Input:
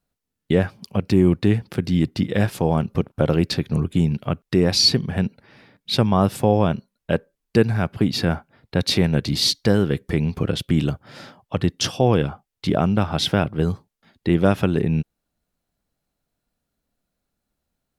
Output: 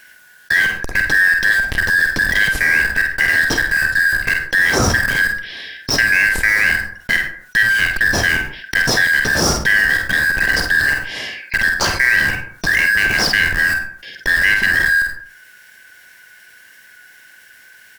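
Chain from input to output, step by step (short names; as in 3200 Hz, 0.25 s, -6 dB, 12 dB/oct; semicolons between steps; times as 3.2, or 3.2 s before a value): four-band scrambler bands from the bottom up 4123; HPF 54 Hz; in parallel at -5 dB: Schmitt trigger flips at -25 dBFS; on the sum: doubler 48 ms -8.5 dB; on a send at -10.5 dB: reverb RT60 0.30 s, pre-delay 42 ms; on the sum: fast leveller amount 50%; gain -1.5 dB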